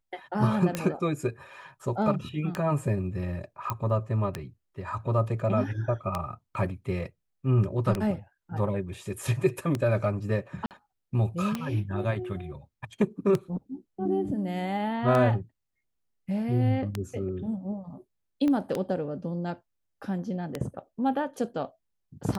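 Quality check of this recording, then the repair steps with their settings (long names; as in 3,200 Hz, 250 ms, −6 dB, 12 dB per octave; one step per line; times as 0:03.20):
scratch tick 33 1/3 rpm −14 dBFS
0:03.70: click −15 dBFS
0:10.66–0:10.71: drop-out 48 ms
0:18.48: click −18 dBFS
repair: click removal
repair the gap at 0:10.66, 48 ms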